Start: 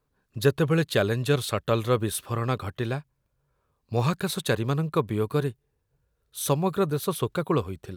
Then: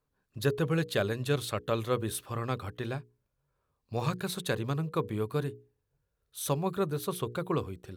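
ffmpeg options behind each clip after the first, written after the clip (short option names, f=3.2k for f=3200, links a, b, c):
-af "bandreject=f=60:t=h:w=6,bandreject=f=120:t=h:w=6,bandreject=f=180:t=h:w=6,bandreject=f=240:t=h:w=6,bandreject=f=300:t=h:w=6,bandreject=f=360:t=h:w=6,bandreject=f=420:t=h:w=6,bandreject=f=480:t=h:w=6,volume=-5.5dB"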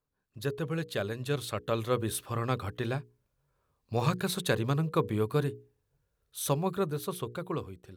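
-af "dynaudnorm=f=390:g=9:m=8dB,volume=-5dB"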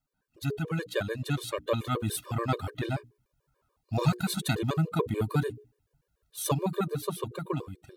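-af "afftfilt=real='re*gt(sin(2*PI*6.9*pts/sr)*(1-2*mod(floor(b*sr/1024/310),2)),0)':imag='im*gt(sin(2*PI*6.9*pts/sr)*(1-2*mod(floor(b*sr/1024/310),2)),0)':win_size=1024:overlap=0.75,volume=4.5dB"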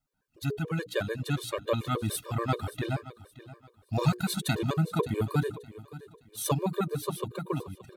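-af "aecho=1:1:573|1146|1719:0.141|0.041|0.0119"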